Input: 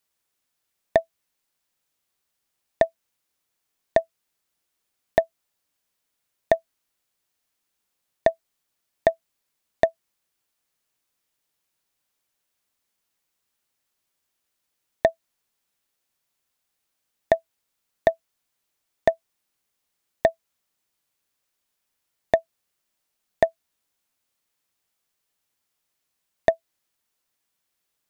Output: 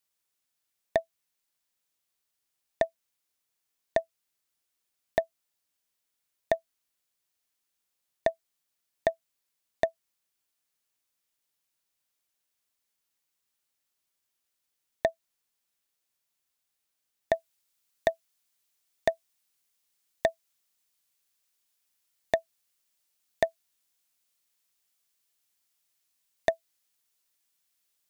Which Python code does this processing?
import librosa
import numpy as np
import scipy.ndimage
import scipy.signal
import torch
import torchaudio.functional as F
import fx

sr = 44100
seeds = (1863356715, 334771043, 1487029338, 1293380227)

y = fx.high_shelf(x, sr, hz=2100.0, db=fx.steps((0.0, 5.0), (17.32, 10.5)))
y = F.gain(torch.from_numpy(y), -7.5).numpy()